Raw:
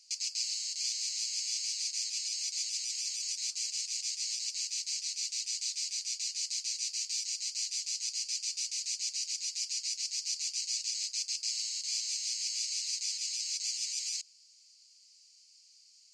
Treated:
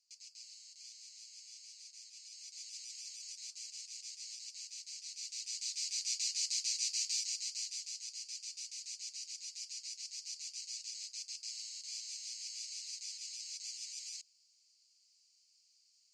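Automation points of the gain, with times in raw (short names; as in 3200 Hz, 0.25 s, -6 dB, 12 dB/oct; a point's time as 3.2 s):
2.11 s -19 dB
2.79 s -12 dB
4.93 s -12 dB
6.11 s -0.5 dB
7.08 s -0.5 dB
8.06 s -10 dB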